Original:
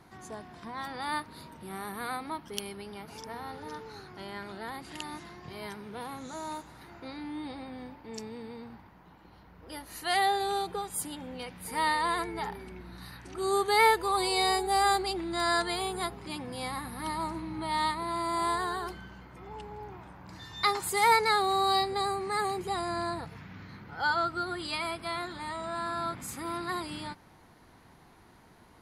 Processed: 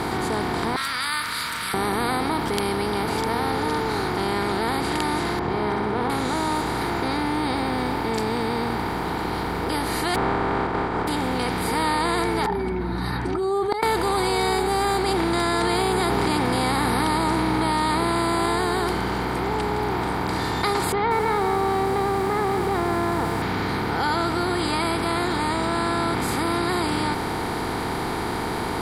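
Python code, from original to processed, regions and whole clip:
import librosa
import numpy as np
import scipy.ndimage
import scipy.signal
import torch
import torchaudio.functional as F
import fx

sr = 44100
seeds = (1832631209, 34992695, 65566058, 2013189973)

y = fx.chain(x, sr, fx.ellip_highpass(hz=1300.0, order=4, stop_db=40),
    fx.high_shelf(hz=5400.0, db=8.5), at=(0.76, 1.74))
y = fx.chain(y, sr, fx.lowpass(hz=1200.0, slope=12),
    fx.room_flutter(wall_m=10.6, rt60_s=0.62), at=(5.39, 6.1))
y = fx.spec_flatten(y, sr, power=0.11, at=(10.14, 11.07), fade=0.02)
y = fx.lowpass(y, sr, hz=1300.0, slope=24, at=(10.14, 11.07), fade=0.02)
y = fx.chain(y, sr, fx.spec_expand(power=2.1),
    fx.gate_flip(shuts_db=-19.0, range_db=-25), at=(12.46, 13.83))
y = fx.chain(y, sr, fx.highpass(hz=53.0, slope=12),
    fx.env_flatten(amount_pct=70), at=(15.08, 18.46))
y = fx.chain(y, sr, fx.gaussian_blur(sigma=4.3),
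    fx.echo_crushed(ms=186, feedback_pct=35, bits=8, wet_db=-14), at=(20.92, 23.42))
y = fx.bin_compress(y, sr, power=0.4)
y = fx.low_shelf(y, sr, hz=490.0, db=9.0)
y = fx.env_flatten(y, sr, amount_pct=50)
y = y * 10.0 ** (-5.5 / 20.0)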